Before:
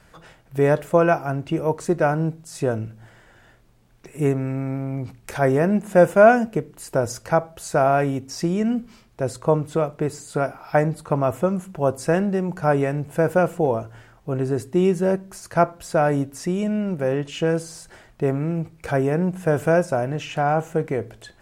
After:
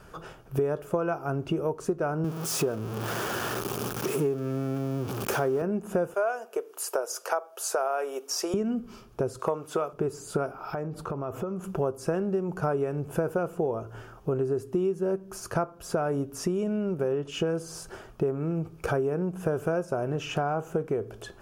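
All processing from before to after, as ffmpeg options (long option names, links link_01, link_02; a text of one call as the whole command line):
ffmpeg -i in.wav -filter_complex "[0:a]asettb=1/sr,asplit=3[link_01][link_02][link_03];[link_01]atrim=end=2.244[link_04];[link_02]atrim=start=2.24:end=5.62,asetpts=PTS-STARTPTS,afade=type=in:duration=0.004:curve=qsin,afade=type=out:start_time=3.376:duration=0.004:curve=qsin,aeval=exprs='val(0)+0.5*0.0473*sgn(val(0))':channel_layout=same,highpass=130[link_05];[link_03]atrim=start=5.616[link_06];[link_04][link_05]acrossfade=duration=0.004:curve1=hsin:curve2=qsin[link_07];[link_07][link_06]acrossfade=duration=0.004:curve1=qsin:curve2=hsin,asettb=1/sr,asplit=3[link_08][link_09][link_10];[link_08]atrim=end=6.144[link_11];[link_09]atrim=start=6.14:end=8.54,asetpts=PTS-STARTPTS,afade=type=in:duration=0.004:curve=qsin,afade=type=out:start_time=2.396:duration=0.004:curve=qsin,highpass=frequency=470:width=0.5412,highpass=frequency=470:width=1.3066,highshelf=frequency=5300:gain=6.5[link_12];[link_10]atrim=start=8.536[link_13];[link_11][link_12]acrossfade=duration=0.004:curve1=hsin:curve2=qsin[link_14];[link_14][link_13]acrossfade=duration=0.004:curve1=qsin:curve2=hsin,asettb=1/sr,asplit=3[link_15][link_16][link_17];[link_15]atrim=end=9.394[link_18];[link_16]atrim=start=9.39:end=9.93,asetpts=PTS-STARTPTS,afade=type=in:duration=0.004:curve=qsin,afade=type=out:start_time=0.536:duration=0.004:curve=qsin,highpass=frequency=900:poles=1,acontrast=71[link_19];[link_17]atrim=start=9.926[link_20];[link_18][link_19]acrossfade=duration=0.004:curve1=hsin:curve2=qsin[link_21];[link_21][link_20]acrossfade=duration=0.004:curve1=qsin:curve2=hsin,asettb=1/sr,asplit=3[link_22][link_23][link_24];[link_22]atrim=end=10.514[link_25];[link_23]atrim=start=10.51:end=11.64,asetpts=PTS-STARTPTS,afade=type=in:duration=0.004:curve=qsin,afade=type=out:start_time=1.126:duration=0.004:curve=qsin,equalizer=frequency=10000:width=1.2:gain=-8,acompressor=threshold=-33dB:ratio=8:attack=3.2:release=140:knee=1:detection=peak[link_26];[link_24]atrim=start=11.636[link_27];[link_25][link_26]acrossfade=duration=0.004:curve1=hsin:curve2=qsin[link_28];[link_28][link_27]acrossfade=duration=0.004:curve1=qsin:curve2=hsin,equalizer=frequency=400:width_type=o:width=0.33:gain=9,equalizer=frequency=1250:width_type=o:width=0.33:gain=6,equalizer=frequency=2000:width_type=o:width=0.33:gain=-11,equalizer=frequency=4000:width_type=o:width=0.33:gain=-7,equalizer=frequency=8000:width_type=o:width=0.33:gain=-6,acompressor=threshold=-28dB:ratio=6,volume=2.5dB" out.wav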